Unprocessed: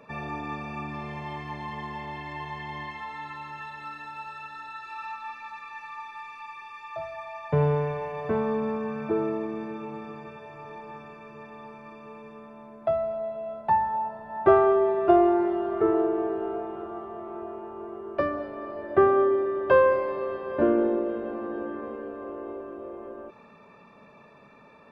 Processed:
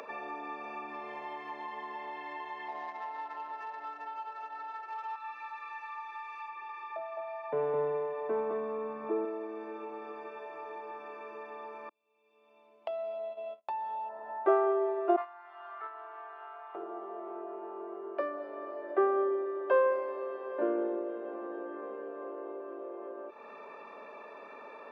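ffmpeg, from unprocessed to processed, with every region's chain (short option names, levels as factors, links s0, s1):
-filter_complex "[0:a]asettb=1/sr,asplit=3[s0][s1][s2];[s0]atrim=end=2.684[s3];[s1]atrim=start=2.68:end=5.16,asetpts=PTS-STARTPTS,afade=t=in:d=0.004:c=qsin,afade=t=out:st=2.476:d=0.004:c=qsin,equalizer=f=680:w=3.2:g=12,adynamicsmooth=sensitivity=3.5:basefreq=960,asplit=2[s4][s5];[s5]adelay=18,volume=0.299[s6];[s4][s6]amix=inputs=2:normalize=0,atrim=end_sample=109368[s7];[s2]atrim=start=5.156[s8];[s3][s7]acrossfade=d=0.004:c1=hsin:c2=qsin[s9];[s9][s8]acrossfade=d=0.004:c1=qsin:c2=hsin,asettb=1/sr,asplit=3[s10][s11][s12];[s10]atrim=end=6.484[s13];[s11]atrim=start=6.48:end=9.25,asetpts=PTS-STARTPTS,afade=t=in:d=0.004:c=qsin,afade=t=out:st=2.766:d=0.004:c=qsin,aemphasis=mode=reproduction:type=bsi,aecho=1:1:211:0.708,atrim=end_sample=122157[s14];[s12]atrim=start=9.246[s15];[s13][s14]acrossfade=d=0.004:c1=hsin:c2=qsin[s16];[s16][s15]acrossfade=d=0.004:c1=qsin:c2=hsin,asettb=1/sr,asplit=3[s17][s18][s19];[s17]atrim=end=11.894[s20];[s18]atrim=start=11.89:end=14.09,asetpts=PTS-STARTPTS,afade=t=in:d=0.004:c=qsin,afade=t=out:st=2.196:d=0.004:c=qsin,agate=range=0.00891:threshold=0.0158:ratio=16:release=100:detection=peak,highshelf=f=2200:t=q:w=3:g=9,acompressor=threshold=0.0447:ratio=3:attack=3.2:release=140:knee=1:detection=peak[s21];[s19]atrim=start=14.086[s22];[s20][s21]acrossfade=d=0.004:c1=hsin:c2=qsin[s23];[s23][s22]acrossfade=d=0.004:c1=qsin:c2=hsin,asettb=1/sr,asplit=3[s24][s25][s26];[s24]atrim=end=15.164[s27];[s25]atrim=start=15.16:end=16.75,asetpts=PTS-STARTPTS,afade=t=in:d=0.004:c=qsin,afade=t=out:st=1.586:d=0.004:c=qsin,highpass=f=1000:w=0.5412,highpass=f=1000:w=1.3066,agate=range=0.224:threshold=0.02:ratio=16:release=100:detection=peak,acontrast=74[s28];[s26]atrim=start=16.746[s29];[s27][s28]acrossfade=d=0.004:c1=hsin:c2=qsin[s30];[s30][s29]acrossfade=d=0.004:c1=qsin:c2=hsin,highpass=f=340:w=0.5412,highpass=f=340:w=1.3066,highshelf=f=3700:g=-12,acompressor=mode=upward:threshold=0.0398:ratio=2.5,volume=0.473"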